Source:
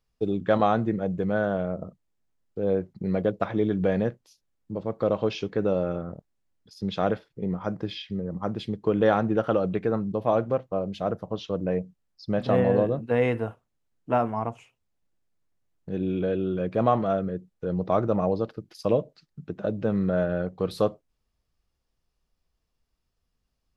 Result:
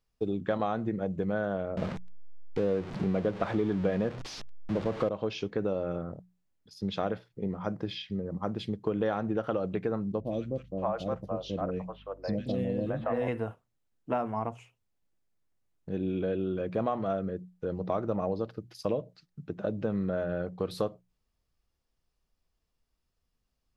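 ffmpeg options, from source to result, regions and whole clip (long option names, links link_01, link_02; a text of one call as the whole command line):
ffmpeg -i in.wav -filter_complex "[0:a]asettb=1/sr,asplit=3[link_01][link_02][link_03];[link_01]atrim=end=1.774[link_04];[link_02]atrim=start=1.77:end=5.09,asetpts=PTS-STARTPTS,afade=type=in:duration=0.004:curve=qsin,afade=type=out:start_time=3.316:duration=0.004:curve=qsin,aeval=exprs='val(0)+0.5*0.02*sgn(val(0))':channel_layout=same,lowpass=4000,acontrast=28[link_05];[link_03]atrim=start=5.086[link_06];[link_04][link_05]acrossfade=duration=0.004:curve1=hsin:curve2=qsin[link_07];[link_07][link_06]acrossfade=duration=0.004:curve1=qsin:curve2=hsin,asettb=1/sr,asplit=3[link_08][link_09][link_10];[link_08]atrim=end=10.204[link_11];[link_09]atrim=start=10.2:end=13.28,asetpts=PTS-STARTPTS,afade=type=in:duration=0.004:curve=qsin,afade=type=out:start_time=3.076:duration=0.004:curve=qsin,bandreject=frequency=420:width=10,aeval=exprs='val(0)+0.00251*(sin(2*PI*50*n/s)+sin(2*PI*2*50*n/s)/2+sin(2*PI*3*50*n/s)/3+sin(2*PI*4*50*n/s)/4+sin(2*PI*5*50*n/s)/5)':channel_layout=same,acrossover=split=510|2300[link_12][link_13][link_14];[link_14]adelay=50[link_15];[link_13]adelay=570[link_16];[link_12][link_16][link_15]amix=inputs=3:normalize=0,atrim=end_sample=135828[link_17];[link_10]atrim=start=13.276[link_18];[link_11][link_17]acrossfade=duration=0.004:curve1=hsin:curve2=qsin[link_19];[link_19][link_18]acrossfade=duration=0.004:curve1=qsin:curve2=hsin,acompressor=threshold=-24dB:ratio=4,bandreject=frequency=60:width_type=h:width=6,bandreject=frequency=120:width_type=h:width=6,bandreject=frequency=180:width_type=h:width=6,volume=-2dB" out.wav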